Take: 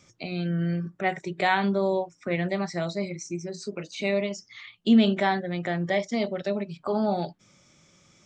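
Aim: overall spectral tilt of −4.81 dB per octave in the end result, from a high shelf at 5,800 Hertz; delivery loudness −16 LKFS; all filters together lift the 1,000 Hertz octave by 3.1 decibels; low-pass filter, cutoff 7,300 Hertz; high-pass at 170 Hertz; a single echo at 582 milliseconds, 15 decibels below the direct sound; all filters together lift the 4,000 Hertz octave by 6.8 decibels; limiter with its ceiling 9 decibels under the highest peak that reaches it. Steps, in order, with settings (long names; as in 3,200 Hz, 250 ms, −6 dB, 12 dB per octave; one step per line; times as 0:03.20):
high-pass filter 170 Hz
low-pass filter 7,300 Hz
parametric band 1,000 Hz +4 dB
parametric band 4,000 Hz +6.5 dB
high-shelf EQ 5,800 Hz +6 dB
brickwall limiter −17 dBFS
single-tap delay 582 ms −15 dB
level +13 dB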